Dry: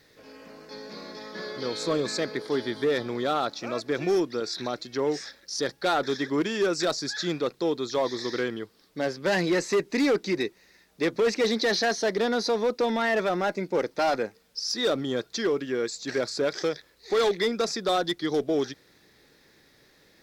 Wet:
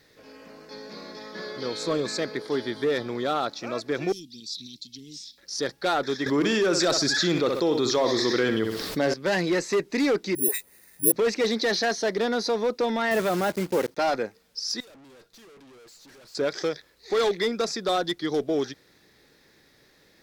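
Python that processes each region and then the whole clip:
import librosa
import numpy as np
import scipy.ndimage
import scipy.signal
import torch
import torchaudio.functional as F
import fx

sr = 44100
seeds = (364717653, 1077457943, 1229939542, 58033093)

y = fx.chain(x, sr, fx.ellip_bandstop(low_hz=240.0, high_hz=3300.0, order=3, stop_db=50),
    fx.low_shelf(hz=360.0, db=-9.0), at=(4.12, 5.38))
y = fx.chain(y, sr, fx.room_flutter(wall_m=10.8, rt60_s=0.33),
    fx.env_flatten(amount_pct=70), at=(6.26, 9.14))
y = fx.chain(y, sr, fx.high_shelf(hz=4300.0, db=-8.5),
    fx.dispersion(late='highs', ms=146.0, hz=680.0),
    fx.resample_bad(factor=4, down='none', up='zero_stuff'), at=(10.35, 11.12))
y = fx.chain(y, sr, fx.block_float(bits=3),
    fx.highpass(hz=76.0, slope=12),
    fx.low_shelf(hz=230.0, db=7.5), at=(13.11, 13.98))
y = fx.chain(y, sr, fx.clip_hard(threshold_db=-35.5),
    fx.comb_fb(f0_hz=94.0, decay_s=0.21, harmonics='all', damping=0.0, mix_pct=50),
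    fx.tube_stage(drive_db=50.0, bias=0.6), at=(14.8, 16.35))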